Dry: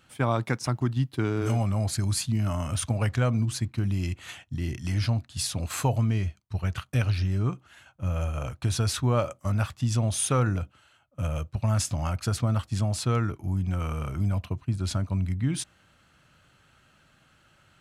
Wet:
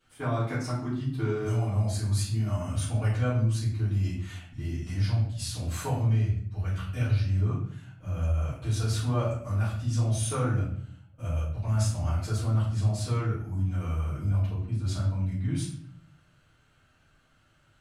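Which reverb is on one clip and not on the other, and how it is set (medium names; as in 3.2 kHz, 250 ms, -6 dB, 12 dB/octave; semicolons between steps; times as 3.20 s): simulated room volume 93 m³, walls mixed, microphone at 3.2 m; trim -16.5 dB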